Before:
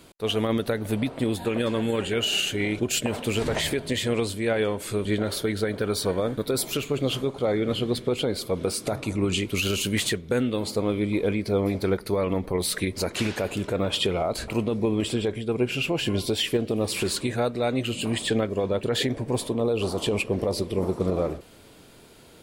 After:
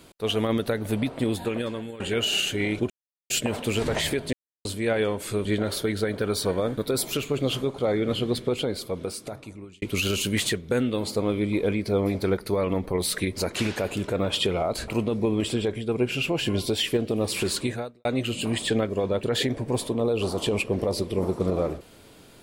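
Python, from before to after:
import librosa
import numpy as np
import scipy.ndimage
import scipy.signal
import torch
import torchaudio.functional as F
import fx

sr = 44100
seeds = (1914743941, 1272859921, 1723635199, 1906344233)

y = fx.edit(x, sr, fx.fade_out_to(start_s=1.37, length_s=0.63, floor_db=-18.5),
    fx.insert_silence(at_s=2.9, length_s=0.4),
    fx.silence(start_s=3.93, length_s=0.32),
    fx.fade_out_span(start_s=8.04, length_s=1.38),
    fx.fade_out_span(start_s=17.29, length_s=0.36, curve='qua'), tone=tone)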